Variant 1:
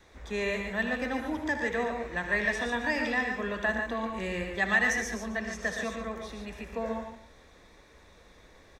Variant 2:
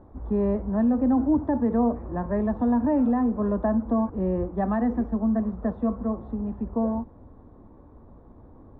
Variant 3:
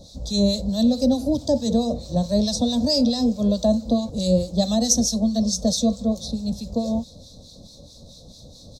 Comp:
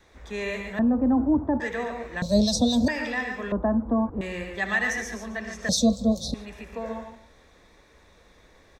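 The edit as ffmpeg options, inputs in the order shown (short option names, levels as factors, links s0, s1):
-filter_complex "[1:a]asplit=2[s0][s1];[2:a]asplit=2[s2][s3];[0:a]asplit=5[s4][s5][s6][s7][s8];[s4]atrim=end=0.792[s9];[s0]atrim=start=0.788:end=1.602[s10];[s5]atrim=start=1.598:end=2.222[s11];[s2]atrim=start=2.218:end=2.882[s12];[s6]atrim=start=2.878:end=3.522[s13];[s1]atrim=start=3.518:end=4.212[s14];[s7]atrim=start=4.208:end=5.692[s15];[s3]atrim=start=5.688:end=6.342[s16];[s8]atrim=start=6.338[s17];[s9][s10]acrossfade=d=0.004:c1=hsin:c2=hsin[s18];[s18][s11]acrossfade=d=0.004:c1=hsin:c2=hsin[s19];[s19][s12]acrossfade=d=0.004:c1=hsin:c2=hsin[s20];[s20][s13]acrossfade=d=0.004:c1=hsin:c2=hsin[s21];[s21][s14]acrossfade=d=0.004:c1=hsin:c2=hsin[s22];[s22][s15]acrossfade=d=0.004:c1=hsin:c2=hsin[s23];[s23][s16]acrossfade=d=0.004:c1=hsin:c2=hsin[s24];[s24][s17]acrossfade=d=0.004:c1=hsin:c2=hsin"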